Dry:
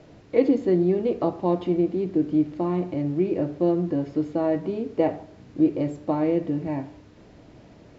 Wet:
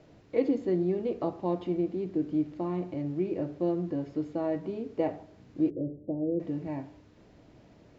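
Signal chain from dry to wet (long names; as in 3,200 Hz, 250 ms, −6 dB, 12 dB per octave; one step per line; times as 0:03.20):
0:05.70–0:06.40: Butterworth low-pass 580 Hz 36 dB per octave
level −7 dB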